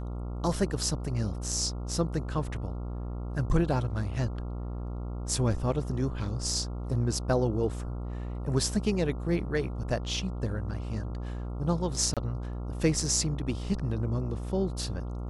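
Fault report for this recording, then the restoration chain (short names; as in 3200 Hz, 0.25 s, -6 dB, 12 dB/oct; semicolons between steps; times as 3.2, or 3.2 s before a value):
buzz 60 Hz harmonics 23 -35 dBFS
12.14–12.17 gap 27 ms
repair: de-hum 60 Hz, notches 23; interpolate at 12.14, 27 ms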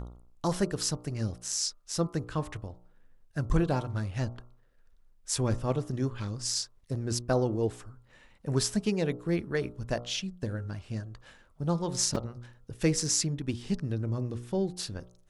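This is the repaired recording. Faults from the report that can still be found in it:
none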